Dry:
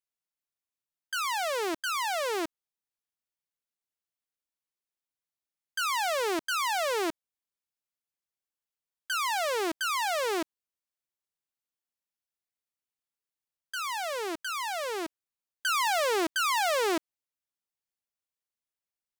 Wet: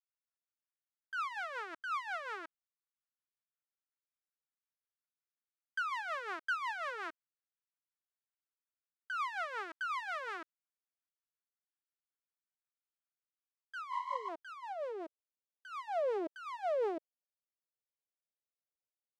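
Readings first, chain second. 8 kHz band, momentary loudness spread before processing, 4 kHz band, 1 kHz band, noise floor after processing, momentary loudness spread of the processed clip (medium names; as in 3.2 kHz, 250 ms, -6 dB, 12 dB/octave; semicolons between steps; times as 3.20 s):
-26.5 dB, 8 LU, -19.0 dB, -8.5 dB, under -85 dBFS, 11 LU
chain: band-pass sweep 1.4 kHz -> 560 Hz, 13.05–15.04 s; spectral replace 13.95–14.26 s, 560–8300 Hz before; rotary cabinet horn 5.5 Hz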